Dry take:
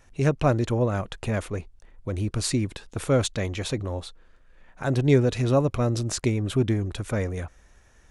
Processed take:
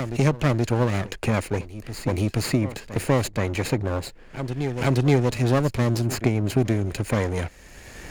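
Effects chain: comb filter that takes the minimum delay 0.42 ms; bass shelf 81 Hz -6 dB; reverse echo 476 ms -18.5 dB; three bands compressed up and down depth 70%; trim +3.5 dB

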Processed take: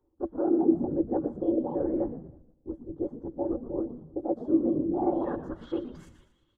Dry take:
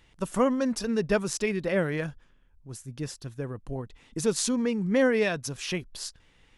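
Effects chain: sawtooth pitch modulation +7.5 st, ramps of 874 ms; gate -54 dBFS, range -11 dB; peaking EQ 6.5 kHz -5.5 dB 1.3 oct; reverse; compression 6:1, threshold -32 dBFS, peak gain reduction 12.5 dB; reverse; low-pass sweep 640 Hz -> 3 kHz, 4.94–6.23 s; whisper effect; static phaser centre 630 Hz, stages 6; small resonant body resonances 330/570/2200/3300 Hz, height 16 dB, ringing for 85 ms; on a send: frequency-shifting echo 117 ms, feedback 42%, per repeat -86 Hz, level -11.5 dB; on the sum: modulated delay 159 ms, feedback 35%, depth 214 cents, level -21 dB

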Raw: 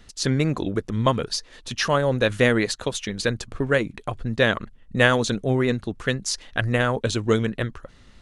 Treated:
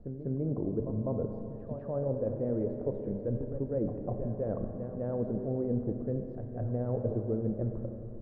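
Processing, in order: reverse echo 198 ms -13.5 dB; reverse; compression 6:1, threshold -28 dBFS, peak gain reduction 15 dB; reverse; Chebyshev low-pass 610 Hz, order 3; Schroeder reverb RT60 3.2 s, combs from 29 ms, DRR 4.5 dB

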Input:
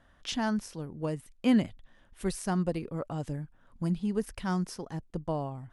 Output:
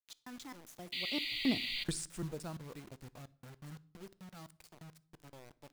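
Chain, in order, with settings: slices played last to first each 152 ms, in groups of 2; Doppler pass-by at 1.74 s, 46 m/s, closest 5.4 m; treble shelf 2.5 kHz +6 dB; in parallel at 0 dB: compression 5:1, threshold -57 dBFS, peak gain reduction 24.5 dB; on the sum: painted sound noise, 0.92–1.84 s, 1.9–4.8 kHz -39 dBFS; bit crusher 9-bit; on a send at -18 dB: reverberation RT60 0.55 s, pre-delay 8 ms

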